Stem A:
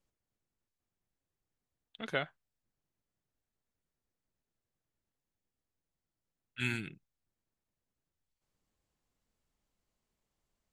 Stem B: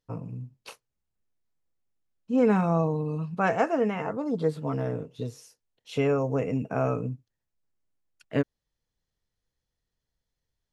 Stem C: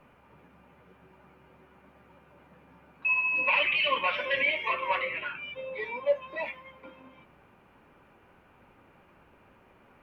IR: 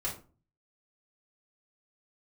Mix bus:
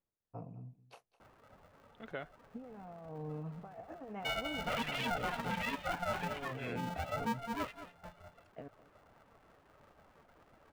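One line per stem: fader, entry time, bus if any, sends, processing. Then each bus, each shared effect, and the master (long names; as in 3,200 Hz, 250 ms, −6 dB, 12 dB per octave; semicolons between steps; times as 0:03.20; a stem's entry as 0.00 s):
−2.5 dB, 0.00 s, no send, no echo send, low-pass filter 1,000 Hz 6 dB per octave; spectral tilt +2 dB per octave
−16.5 dB, 0.25 s, no send, echo send −18 dB, parametric band 720 Hz +13 dB 0.31 octaves; compressor whose output falls as the input rises −29 dBFS, ratio −1
−1.0 dB, 1.20 s, no send, echo send −15 dB, octave-band graphic EQ 125/250/1,000/2,000 Hz −11/+3/+6/−10 dB; reverb reduction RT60 1.2 s; ring modulator with a square carrier 350 Hz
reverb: not used
echo: single-tap delay 207 ms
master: high-shelf EQ 2,700 Hz −9 dB; brickwall limiter −27.5 dBFS, peak gain reduction 12 dB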